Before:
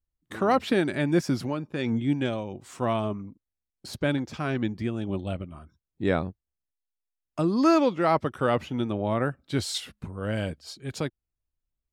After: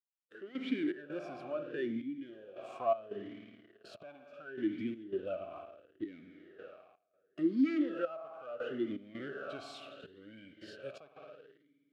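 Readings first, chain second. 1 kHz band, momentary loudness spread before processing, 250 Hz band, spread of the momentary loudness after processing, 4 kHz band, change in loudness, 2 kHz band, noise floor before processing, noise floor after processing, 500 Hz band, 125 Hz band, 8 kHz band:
-15.0 dB, 15 LU, -9.5 dB, 20 LU, -16.0 dB, -10.5 dB, -13.0 dB, under -85 dBFS, -77 dBFS, -11.0 dB, -25.0 dB, under -25 dB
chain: low shelf 360 Hz -4 dB; spring tank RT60 2.7 s, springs 54 ms, chirp 40 ms, DRR 10 dB; dynamic EQ 1500 Hz, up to +6 dB, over -49 dBFS, Q 5.4; sample leveller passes 3; compressor 5:1, threshold -24 dBFS, peak gain reduction 10.5 dB; harmonic-percussive split percussive -8 dB; step gate "...xx.xxxxx" 82 bpm -12 dB; vowel sweep a-i 0.72 Hz; gain +2 dB

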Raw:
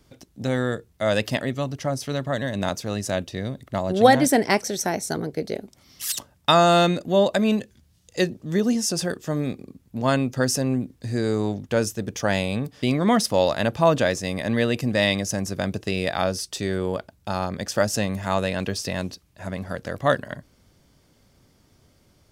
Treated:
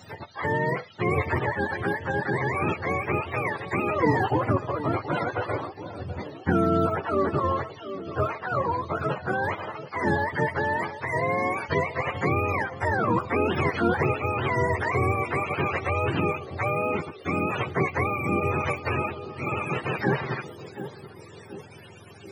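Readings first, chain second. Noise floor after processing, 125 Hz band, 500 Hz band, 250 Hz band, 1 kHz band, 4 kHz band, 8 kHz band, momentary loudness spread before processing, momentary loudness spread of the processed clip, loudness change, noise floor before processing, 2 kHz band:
-46 dBFS, -1.0 dB, -4.0 dB, -5.0 dB, -0.5 dB, -14.0 dB, under -20 dB, 12 LU, 11 LU, -3.0 dB, -61 dBFS, +1.5 dB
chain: spectrum mirrored in octaves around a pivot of 480 Hz; narrowing echo 0.729 s, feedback 43%, band-pass 430 Hz, level -20.5 dB; spectral compressor 2:1; gain -5.5 dB

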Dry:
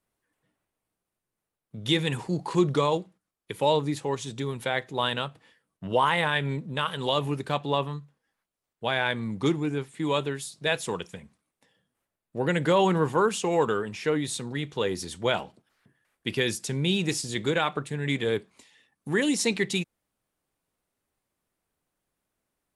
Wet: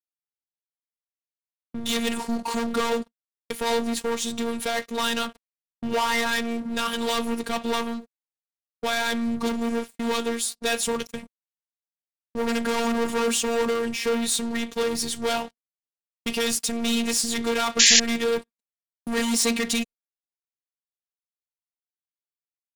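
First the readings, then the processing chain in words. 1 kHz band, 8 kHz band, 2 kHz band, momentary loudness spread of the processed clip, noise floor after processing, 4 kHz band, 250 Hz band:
0.0 dB, +12.0 dB, +2.0 dB, 8 LU, under -85 dBFS, +5.5 dB, +2.5 dB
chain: low shelf 83 Hz +8 dB; sample leveller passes 5; robotiser 232 Hz; painted sound noise, 17.79–18, 1600–7400 Hz -9 dBFS; high shelf 3800 Hz +4.5 dB; gate -29 dBFS, range -45 dB; gain -8.5 dB

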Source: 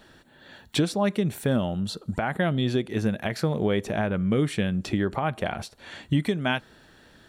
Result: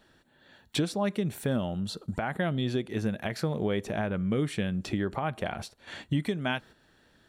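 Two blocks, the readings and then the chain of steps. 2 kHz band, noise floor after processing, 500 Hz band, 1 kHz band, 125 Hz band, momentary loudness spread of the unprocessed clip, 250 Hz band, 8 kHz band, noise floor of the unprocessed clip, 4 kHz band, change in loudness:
-4.5 dB, -64 dBFS, -4.5 dB, -4.5 dB, -4.5 dB, 6 LU, -4.5 dB, -3.5 dB, -55 dBFS, -4.0 dB, -4.5 dB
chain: gate -43 dBFS, range -9 dB; in parallel at +0.5 dB: compressor, threshold -38 dBFS, peak gain reduction 18.5 dB; on the sum: gain -6 dB

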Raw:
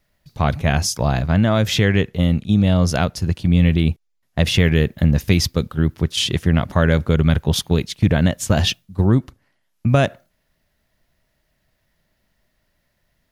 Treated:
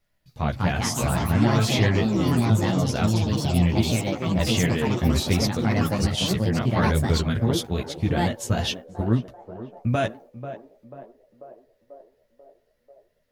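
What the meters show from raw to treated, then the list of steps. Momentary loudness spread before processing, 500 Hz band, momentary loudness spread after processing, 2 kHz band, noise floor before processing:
6 LU, -4.5 dB, 9 LU, -5.0 dB, -69 dBFS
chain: narrowing echo 0.49 s, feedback 69%, band-pass 550 Hz, level -10.5 dB; echoes that change speed 0.28 s, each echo +4 st, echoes 3; chorus voices 4, 0.55 Hz, delay 13 ms, depth 4.7 ms; gain -4 dB

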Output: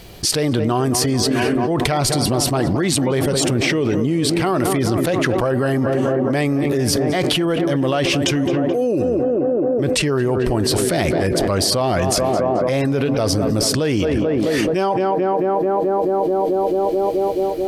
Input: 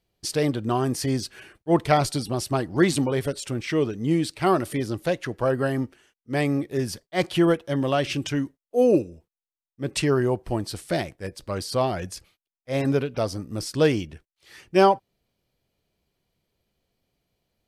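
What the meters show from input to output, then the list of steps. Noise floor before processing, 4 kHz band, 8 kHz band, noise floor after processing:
under -85 dBFS, +11.0 dB, +12.5 dB, -20 dBFS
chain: tape echo 0.217 s, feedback 86%, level -13 dB, low-pass 1500 Hz; fast leveller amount 100%; gain -4 dB

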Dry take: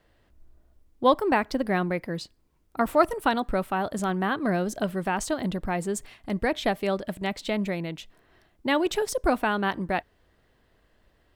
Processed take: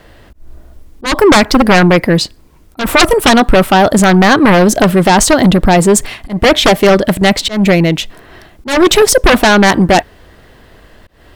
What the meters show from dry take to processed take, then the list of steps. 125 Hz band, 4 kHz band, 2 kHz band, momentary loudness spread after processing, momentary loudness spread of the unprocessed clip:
+20.0 dB, +22.5 dB, +18.5 dB, 8 LU, 10 LU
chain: sine folder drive 15 dB, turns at -7 dBFS; auto swell 0.193 s; gain +4.5 dB

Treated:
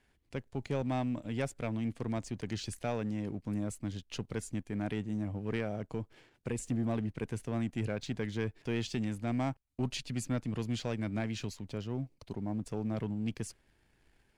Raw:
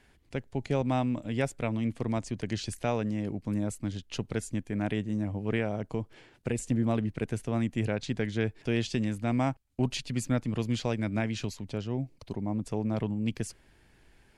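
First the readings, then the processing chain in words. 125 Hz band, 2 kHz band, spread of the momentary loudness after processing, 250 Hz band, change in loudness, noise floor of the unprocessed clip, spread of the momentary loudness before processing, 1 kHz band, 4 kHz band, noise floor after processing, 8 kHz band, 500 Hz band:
-5.0 dB, -5.5 dB, 7 LU, -4.5 dB, -5.0 dB, -62 dBFS, 7 LU, -5.5 dB, -4.0 dB, -72 dBFS, -4.0 dB, -5.0 dB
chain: sample leveller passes 1; gain -7.5 dB

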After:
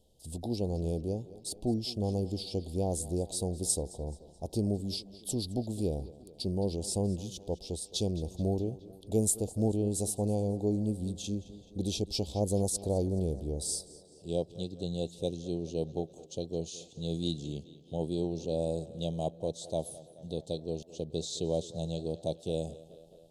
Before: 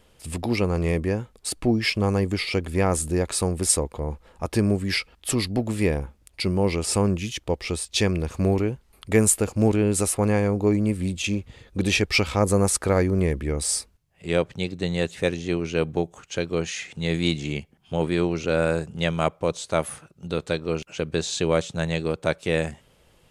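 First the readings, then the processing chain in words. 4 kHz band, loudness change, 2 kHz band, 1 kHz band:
-10.0 dB, -9.5 dB, under -30 dB, -13.5 dB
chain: Chebyshev band-stop 740–3600 Hz, order 3; on a send: tape echo 0.213 s, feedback 69%, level -17 dB, low-pass 5800 Hz; on the sum: gain -8.5 dB

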